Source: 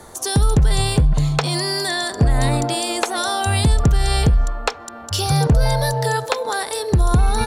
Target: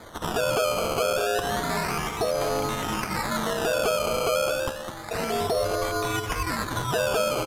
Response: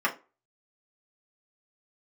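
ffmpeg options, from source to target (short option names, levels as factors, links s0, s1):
-filter_complex "[0:a]aeval=exprs='val(0)*sin(2*PI*560*n/s)':c=same,alimiter=limit=0.141:level=0:latency=1:release=77,asplit=2[s0][s1];[s1]aecho=0:1:212:0.376[s2];[s0][s2]amix=inputs=2:normalize=0,acrusher=samples=16:mix=1:aa=0.000001:lfo=1:lforange=16:lforate=0.3,aresample=32000,aresample=44100,asplit=2[s3][s4];[s4]aecho=0:1:223:0.168[s5];[s3][s5]amix=inputs=2:normalize=0"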